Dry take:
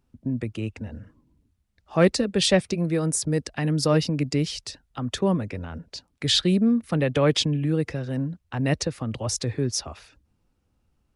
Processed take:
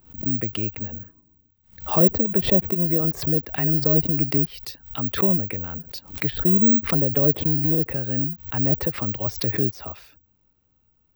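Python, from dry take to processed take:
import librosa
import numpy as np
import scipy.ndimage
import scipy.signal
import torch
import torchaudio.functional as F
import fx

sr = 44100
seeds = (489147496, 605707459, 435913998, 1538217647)

y = fx.env_lowpass_down(x, sr, base_hz=540.0, full_db=-18.0)
y = (np.kron(scipy.signal.resample_poly(y, 1, 2), np.eye(2)[0]) * 2)[:len(y)]
y = fx.pre_swell(y, sr, db_per_s=140.0)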